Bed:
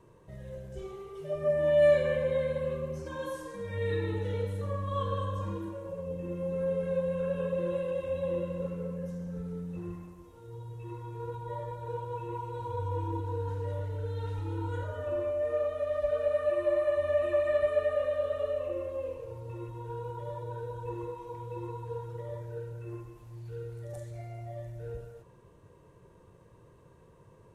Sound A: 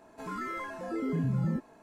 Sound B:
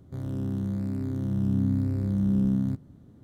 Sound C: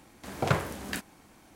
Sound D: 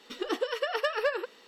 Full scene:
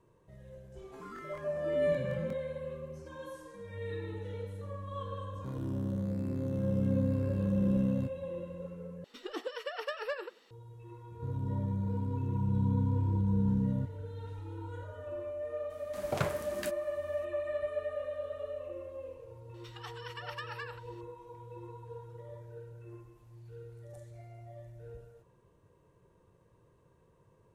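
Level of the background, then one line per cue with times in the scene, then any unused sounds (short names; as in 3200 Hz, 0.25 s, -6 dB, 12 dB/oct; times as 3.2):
bed -8 dB
0.74 add A -10 dB + crackling interface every 0.19 s, samples 1024, repeat, from 0.4
5.32 add B -5 dB
9.04 replace with D -8.5 dB + outdoor echo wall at 16 m, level -20 dB
11.1 add B -15 dB + bell 90 Hz +14 dB 2.8 oct
15.7 add C -7 dB + high shelf 8100 Hz +5 dB
19.54 add D -10 dB + brick-wall FIR high-pass 710 Hz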